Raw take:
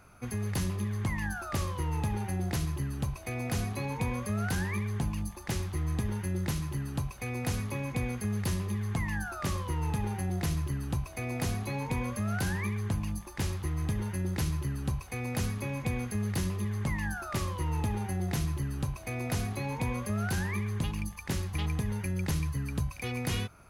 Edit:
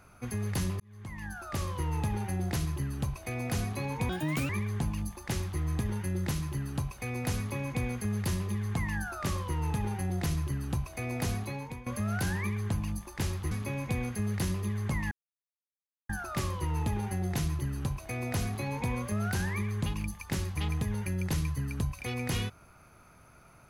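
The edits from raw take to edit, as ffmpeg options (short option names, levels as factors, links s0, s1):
-filter_complex "[0:a]asplit=7[s0][s1][s2][s3][s4][s5][s6];[s0]atrim=end=0.8,asetpts=PTS-STARTPTS,afade=t=out:st=0.796:d=0.004:c=hsin[s7];[s1]atrim=start=0.8:end=4.094,asetpts=PTS-STARTPTS,afade=t=in:d=0.97[s8];[s2]atrim=start=4.09:end=4.69,asetpts=PTS-STARTPTS,asetrate=65709,aresample=44100,atrim=end_sample=17758,asetpts=PTS-STARTPTS[s9];[s3]atrim=start=4.686:end=12.06,asetpts=PTS-STARTPTS,afade=t=out:st=6.874:d=0.5:silence=0.11885[s10];[s4]atrim=start=12.06:end=13.712,asetpts=PTS-STARTPTS,afade=t=in:d=0.004:c=hsin:silence=0.11885[s11];[s5]atrim=start=15.468:end=17.07,asetpts=PTS-STARTPTS,afade=t=out:st=1.598:d=0.004:c=hsin,apad=pad_dur=0.98[s12];[s6]atrim=start=17.07,asetpts=PTS-STARTPTS,afade=t=in:d=0.004:c=hsin[s13];[s7][s8]concat=n=2:v=0:a=1[s14];[s14][s9]acrossfade=d=0.004:c1=hsin:c2=hsin[s15];[s10][s11]concat=n=2:v=0:a=1[s16];[s15][s16]acrossfade=d=0.004:c1=hsin:c2=hsin[s17];[s12][s13]concat=n=2:v=0:a=1[s18];[s17][s18]acrossfade=d=0.004:c1=hsin:c2=hsin"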